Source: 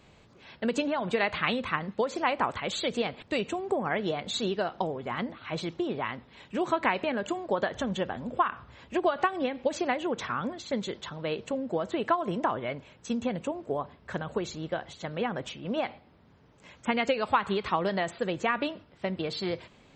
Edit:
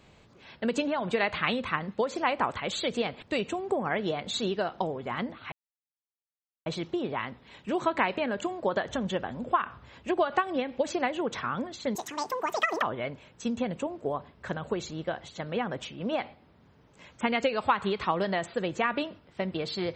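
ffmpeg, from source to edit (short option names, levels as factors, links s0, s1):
-filter_complex "[0:a]asplit=4[s0][s1][s2][s3];[s0]atrim=end=5.52,asetpts=PTS-STARTPTS,afade=t=out:st=5.516:d=0.004:c=hsin,apad=pad_dur=1.14[s4];[s1]atrim=start=5.52:end=10.814,asetpts=PTS-STARTPTS,afade=t=in:d=0.004:c=hsin[s5];[s2]atrim=start=10.81:end=12.47,asetpts=PTS-STARTPTS,asetrate=83790,aresample=44100,atrim=end_sample=38529,asetpts=PTS-STARTPTS[s6];[s3]atrim=start=12.466[s7];[s4][s5]concat=n=2:v=0:a=1[s8];[s8][s6]acrossfade=d=0.004:c1=hsin:c2=hsin[s9];[s9][s7]acrossfade=d=0.004:c1=hsin:c2=hsin"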